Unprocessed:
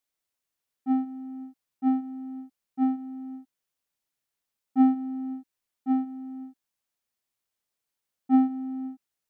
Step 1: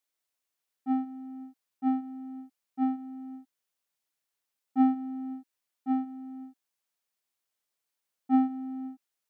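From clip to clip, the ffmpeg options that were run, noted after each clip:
-af "lowshelf=f=210:g=-9"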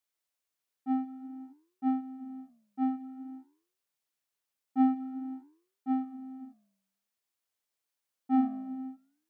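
-af "flanger=delay=8.5:depth=9.6:regen=-86:speed=0.51:shape=sinusoidal,volume=2.5dB"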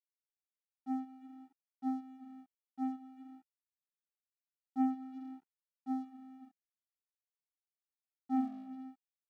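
-af "aeval=exprs='sgn(val(0))*max(abs(val(0))-0.00237,0)':c=same,volume=-6.5dB"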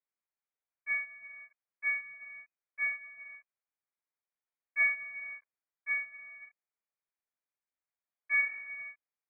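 -af "acrusher=bits=4:mode=log:mix=0:aa=0.000001,lowpass=f=2.1k:t=q:w=0.5098,lowpass=f=2.1k:t=q:w=0.6013,lowpass=f=2.1k:t=q:w=0.9,lowpass=f=2.1k:t=q:w=2.563,afreqshift=-2500,volume=3.5dB"

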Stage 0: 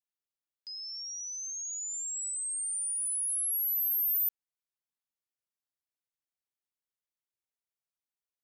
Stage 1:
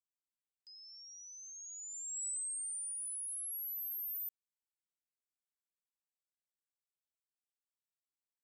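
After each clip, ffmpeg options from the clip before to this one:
-af "agate=range=-8dB:threshold=-36dB:ratio=16:detection=peak,equalizer=f=7.9k:w=4.2:g=14,acompressor=threshold=-38dB:ratio=2,volume=-6.5dB"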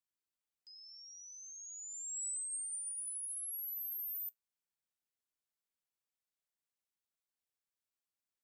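-af "flanger=delay=7.2:depth=8.7:regen=-81:speed=0.25:shape=triangular,volume=4dB"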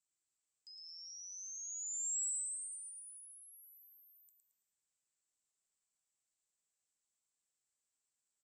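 -filter_complex "[0:a]acompressor=threshold=-52dB:ratio=6,lowpass=f=7.7k:t=q:w=6.4,asplit=2[a][b];[b]aecho=0:1:111|222|333|444|555:0.562|0.231|0.0945|0.0388|0.0159[c];[a][c]amix=inputs=2:normalize=0,volume=-2.5dB"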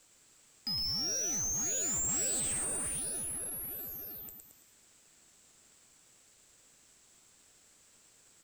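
-filter_complex "[0:a]aeval=exprs='if(lt(val(0),0),0.708*val(0),val(0))':c=same,asplit=2[a][b];[b]highpass=f=720:p=1,volume=30dB,asoftclip=type=tanh:threshold=-30.5dB[c];[a][c]amix=inputs=2:normalize=0,lowpass=f=5.3k:p=1,volume=-6dB,asplit=2[d][e];[e]acrusher=samples=42:mix=1:aa=0.000001,volume=-11dB[f];[d][f]amix=inputs=2:normalize=0,volume=6dB"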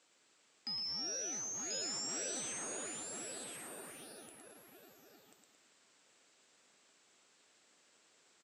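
-af "highpass=270,lowpass=5.1k,aecho=1:1:1038:0.631,volume=-2.5dB"

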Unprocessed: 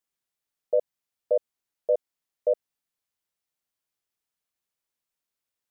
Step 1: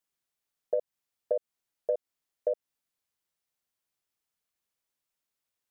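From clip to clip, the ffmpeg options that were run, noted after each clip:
-af "acompressor=threshold=-25dB:ratio=6"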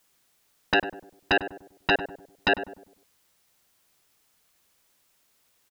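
-filter_complex "[0:a]aeval=exprs='0.15*sin(PI/2*5.62*val(0)/0.15)':c=same,asplit=2[a][b];[b]adelay=99,lowpass=f=840:p=1,volume=-9dB,asplit=2[c][d];[d]adelay=99,lowpass=f=840:p=1,volume=0.44,asplit=2[e][f];[f]adelay=99,lowpass=f=840:p=1,volume=0.44,asplit=2[g][h];[h]adelay=99,lowpass=f=840:p=1,volume=0.44,asplit=2[i][j];[j]adelay=99,lowpass=f=840:p=1,volume=0.44[k];[a][c][e][g][i][k]amix=inputs=6:normalize=0"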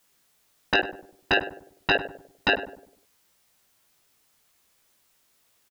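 -filter_complex "[0:a]asplit=2[a][b];[b]adelay=19,volume=-5.5dB[c];[a][c]amix=inputs=2:normalize=0"

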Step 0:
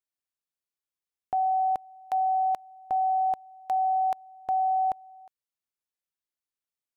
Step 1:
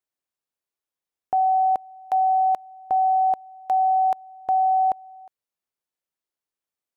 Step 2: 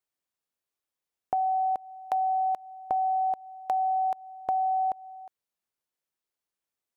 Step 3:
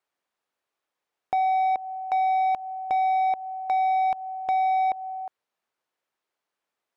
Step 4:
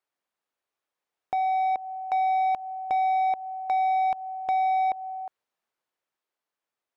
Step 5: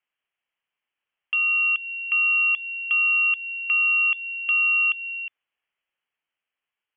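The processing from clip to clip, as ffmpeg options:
-af "equalizer=f=540:t=o:w=2.8:g=6"
-af "acompressor=threshold=-25dB:ratio=6"
-filter_complex "[0:a]asplit=2[a][b];[b]highpass=f=720:p=1,volume=20dB,asoftclip=type=tanh:threshold=-15.5dB[c];[a][c]amix=inputs=2:normalize=0,lowpass=f=1.2k:p=1,volume=-6dB"
-af "dynaudnorm=f=260:g=11:m=3dB,volume=-4dB"
-af "lowpass=f=3k:t=q:w=0.5098,lowpass=f=3k:t=q:w=0.6013,lowpass=f=3k:t=q:w=0.9,lowpass=f=3k:t=q:w=2.563,afreqshift=-3500,volume=3dB"

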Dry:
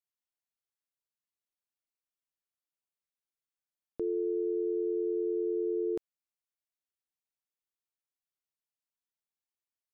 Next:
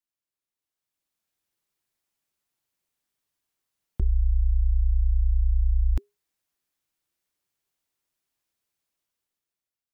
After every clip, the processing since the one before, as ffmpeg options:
-af "bandreject=f=640:w=12,dynaudnorm=f=270:g=7:m=11dB,afreqshift=-410"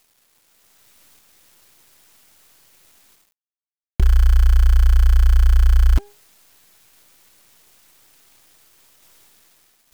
-af "areverse,acompressor=mode=upward:threshold=-40dB:ratio=2.5,areverse,acrusher=bits=7:dc=4:mix=0:aa=0.000001,volume=9dB"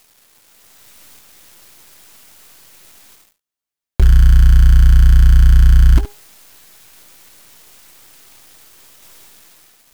-af "aecho=1:1:19|72:0.188|0.168,asoftclip=type=tanh:threshold=-11dB,volume=8.5dB"

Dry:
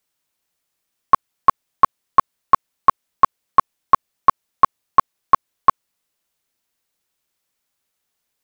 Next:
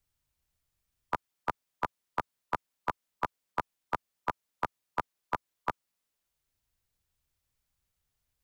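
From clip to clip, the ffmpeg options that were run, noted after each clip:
-filter_complex "[0:a]afftfilt=real='re*lt(hypot(re,im),1)':imag='im*lt(hypot(re,im),1)':win_size=1024:overlap=0.75,acrossover=split=100|330|1000[a][b][c][d];[a]acompressor=mode=upward:threshold=-57dB:ratio=2.5[e];[e][b][c][d]amix=inputs=4:normalize=0,volume=-8dB"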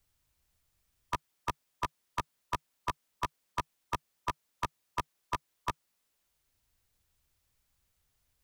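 -filter_complex "[0:a]equalizer=f=150:w=7.4:g=-3,acrossover=split=2800[a][b];[a]asoftclip=type=hard:threshold=-32dB[c];[c][b]amix=inputs=2:normalize=0,volume=5.5dB"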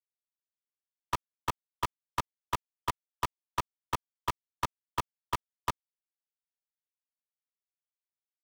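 -af "acrusher=bits=4:mix=0:aa=0.5"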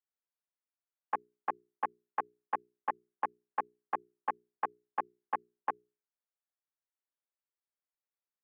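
-af "highpass=f=460:t=q:w=0.5412,highpass=f=460:t=q:w=1.307,lowpass=f=2.1k:t=q:w=0.5176,lowpass=f=2.1k:t=q:w=0.7071,lowpass=f=2.1k:t=q:w=1.932,afreqshift=-130,bandreject=f=60:t=h:w=6,bandreject=f=120:t=h:w=6,bandreject=f=180:t=h:w=6,bandreject=f=240:t=h:w=6,bandreject=f=300:t=h:w=6,bandreject=f=360:t=h:w=6,bandreject=f=420:t=h:w=6"

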